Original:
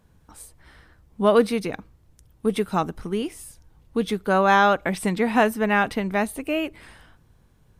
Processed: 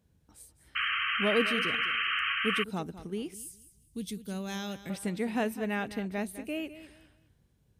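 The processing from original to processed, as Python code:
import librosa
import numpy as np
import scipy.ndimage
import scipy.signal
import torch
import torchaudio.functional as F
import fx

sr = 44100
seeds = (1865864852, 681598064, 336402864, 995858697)

y = scipy.signal.sosfilt(scipy.signal.butter(2, 50.0, 'highpass', fs=sr, output='sos'), x)
y = fx.peak_eq(y, sr, hz=1100.0, db=-9.0, octaves=1.4)
y = fx.echo_feedback(y, sr, ms=205, feedback_pct=26, wet_db=-14)
y = fx.spec_paint(y, sr, seeds[0], shape='noise', start_s=0.75, length_s=1.89, low_hz=1100.0, high_hz=3200.0, level_db=-22.0)
y = fx.curve_eq(y, sr, hz=(170.0, 540.0, 1300.0, 7300.0), db=(0, -12, -12, 7), at=(3.34, 4.9))
y = F.gain(torch.from_numpy(y), -8.5).numpy()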